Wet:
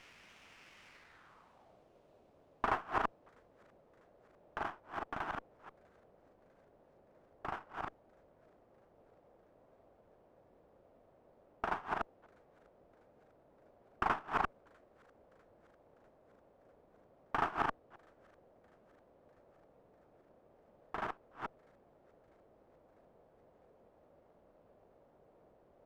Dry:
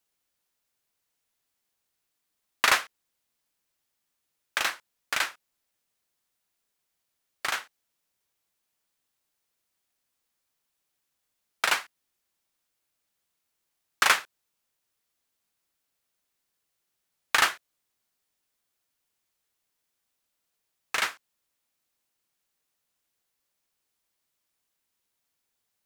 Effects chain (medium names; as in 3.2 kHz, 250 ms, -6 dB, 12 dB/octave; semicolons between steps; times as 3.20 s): chunks repeated in reverse 219 ms, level -0.5 dB; static phaser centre 1.3 kHz, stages 4; in parallel at -6 dB: word length cut 8-bit, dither triangular; on the sum: low-pass sweep 2.6 kHz -> 580 Hz, 0.86–1.82 s; feedback echo behind a high-pass 648 ms, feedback 64%, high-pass 5.2 kHz, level -10 dB; sliding maximum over 5 samples; trim -1.5 dB